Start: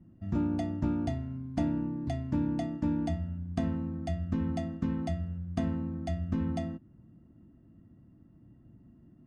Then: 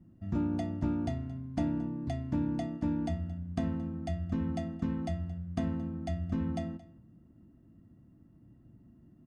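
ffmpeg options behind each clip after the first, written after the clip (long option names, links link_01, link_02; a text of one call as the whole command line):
ffmpeg -i in.wav -af "aecho=1:1:223:0.106,volume=-1.5dB" out.wav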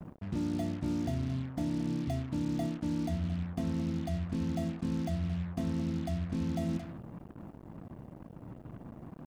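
ffmpeg -i in.wav -af "equalizer=frequency=160:width_type=o:width=0.67:gain=4,equalizer=frequency=400:width_type=o:width=0.67:gain=4,equalizer=frequency=1600:width_type=o:width=0.67:gain=-4,areverse,acompressor=threshold=-38dB:ratio=12,areverse,acrusher=bits=8:mix=0:aa=0.5,volume=8.5dB" out.wav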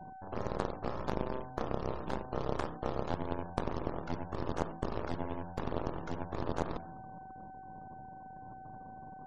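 ffmpeg -i in.wav -af "aeval=exprs='val(0)+0.01*sin(2*PI*760*n/s)':channel_layout=same,aeval=exprs='0.0891*(cos(1*acos(clip(val(0)/0.0891,-1,1)))-cos(1*PI/2))+0.0355*(cos(2*acos(clip(val(0)/0.0891,-1,1)))-cos(2*PI/2))+0.0398*(cos(3*acos(clip(val(0)/0.0891,-1,1)))-cos(3*PI/2))':channel_layout=same,afftfilt=real='re*gte(hypot(re,im),0.002)':imag='im*gte(hypot(re,im),0.002)':win_size=1024:overlap=0.75,volume=3dB" out.wav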